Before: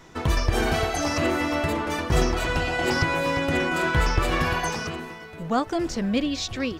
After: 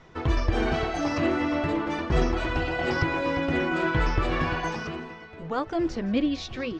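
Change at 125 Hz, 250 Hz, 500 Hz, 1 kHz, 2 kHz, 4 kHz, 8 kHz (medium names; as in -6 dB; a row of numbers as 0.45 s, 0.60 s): -2.5 dB, -0.5 dB, -2.0 dB, -3.0 dB, -3.5 dB, -6.0 dB, -13.0 dB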